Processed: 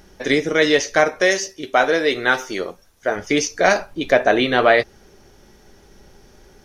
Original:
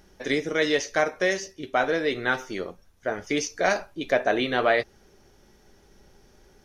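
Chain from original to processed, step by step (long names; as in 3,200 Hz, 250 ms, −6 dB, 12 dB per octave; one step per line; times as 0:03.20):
0:01.21–0:03.16: bass and treble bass −7 dB, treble +4 dB
0:03.88–0:04.33: background noise brown −54 dBFS
level +7.5 dB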